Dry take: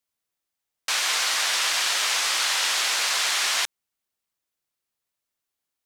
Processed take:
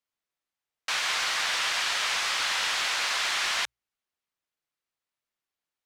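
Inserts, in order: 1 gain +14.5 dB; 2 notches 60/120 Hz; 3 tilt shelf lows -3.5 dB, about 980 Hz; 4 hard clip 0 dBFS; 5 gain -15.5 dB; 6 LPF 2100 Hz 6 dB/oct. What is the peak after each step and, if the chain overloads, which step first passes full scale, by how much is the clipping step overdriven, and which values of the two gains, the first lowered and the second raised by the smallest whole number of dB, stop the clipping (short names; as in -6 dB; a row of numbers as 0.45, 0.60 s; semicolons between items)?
+4.0, +3.5, +6.5, 0.0, -15.5, -17.5 dBFS; step 1, 6.5 dB; step 1 +7.5 dB, step 5 -8.5 dB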